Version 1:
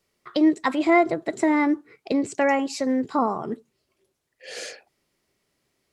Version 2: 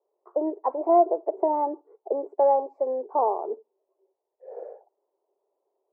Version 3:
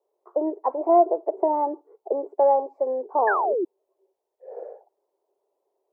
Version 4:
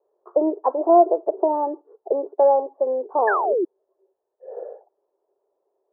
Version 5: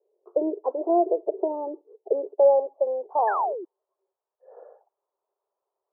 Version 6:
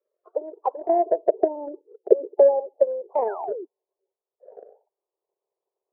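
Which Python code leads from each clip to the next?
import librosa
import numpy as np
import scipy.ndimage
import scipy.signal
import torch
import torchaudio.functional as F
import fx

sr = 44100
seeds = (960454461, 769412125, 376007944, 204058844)

y1 = scipy.signal.sosfilt(scipy.signal.ellip(3, 1.0, 60, [390.0, 930.0], 'bandpass', fs=sr, output='sos'), x)
y1 = F.gain(torch.from_numpy(y1), 3.0).numpy()
y2 = fx.spec_paint(y1, sr, seeds[0], shape='fall', start_s=3.27, length_s=0.38, low_hz=320.0, high_hz=1800.0, level_db=-25.0)
y2 = F.gain(torch.from_numpy(y2), 1.5).numpy()
y3 = fx.rider(y2, sr, range_db=5, speed_s=2.0)
y3 = scipy.signal.sosfilt(scipy.signal.cheby1(6, 3, 1800.0, 'lowpass', fs=sr, output='sos'), y3)
y3 = F.gain(torch.from_numpy(y3), 3.5).numpy()
y4 = fx.filter_sweep_bandpass(y3, sr, from_hz=430.0, to_hz=1200.0, start_s=2.13, end_s=3.95, q=2.4)
y5 = fx.spec_quant(y4, sr, step_db=30)
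y5 = fx.filter_sweep_bandpass(y5, sr, from_hz=1400.0, to_hz=400.0, start_s=0.46, end_s=1.82, q=1.8)
y5 = fx.transient(y5, sr, attack_db=8, sustain_db=-1)
y5 = F.gain(torch.from_numpy(y5), 2.5).numpy()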